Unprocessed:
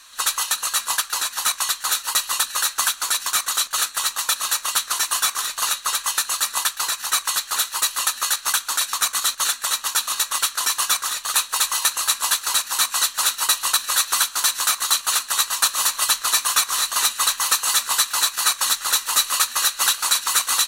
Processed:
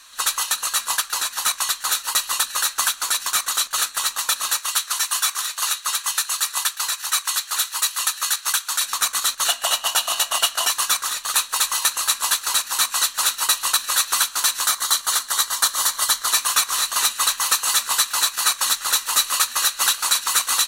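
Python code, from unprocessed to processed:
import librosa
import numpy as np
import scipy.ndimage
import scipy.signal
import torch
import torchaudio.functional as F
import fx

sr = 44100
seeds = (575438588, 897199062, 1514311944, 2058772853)

y = fx.highpass(x, sr, hz=970.0, slope=6, at=(4.58, 8.84))
y = fx.small_body(y, sr, hz=(680.0, 2900.0), ring_ms=25, db=fx.line((9.47, 18.0), (10.69, 15.0)), at=(9.47, 10.69), fade=0.02)
y = fx.notch(y, sr, hz=2600.0, q=5.3, at=(14.66, 16.3))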